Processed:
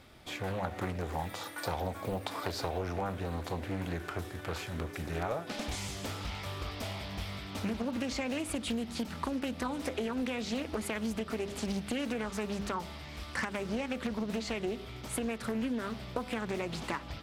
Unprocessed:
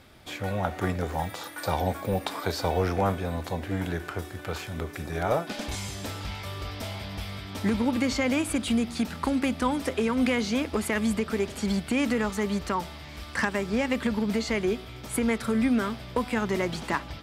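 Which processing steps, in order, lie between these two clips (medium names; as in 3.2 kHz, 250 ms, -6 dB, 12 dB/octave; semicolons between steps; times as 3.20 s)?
band-stop 1.6 kHz, Q 19; de-hum 101.1 Hz, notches 5; compression 6:1, threshold -28 dBFS, peak gain reduction 8 dB; loudspeaker Doppler distortion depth 0.47 ms; trim -2.5 dB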